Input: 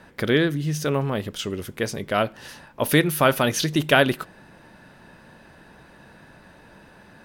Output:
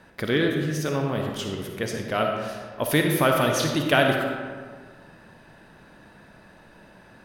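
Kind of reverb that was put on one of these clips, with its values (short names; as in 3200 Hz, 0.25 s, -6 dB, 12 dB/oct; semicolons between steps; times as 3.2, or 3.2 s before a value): digital reverb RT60 1.7 s, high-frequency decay 0.55×, pre-delay 15 ms, DRR 2 dB; gain -3.5 dB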